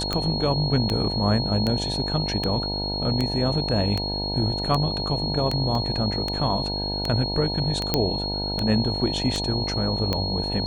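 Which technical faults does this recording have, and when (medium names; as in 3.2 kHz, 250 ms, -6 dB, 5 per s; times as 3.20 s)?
buzz 50 Hz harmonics 19 -30 dBFS
tick 78 rpm -11 dBFS
whine 4.3 kHz -28 dBFS
5.75 s: dropout 2.2 ms
7.94 s: pop -5 dBFS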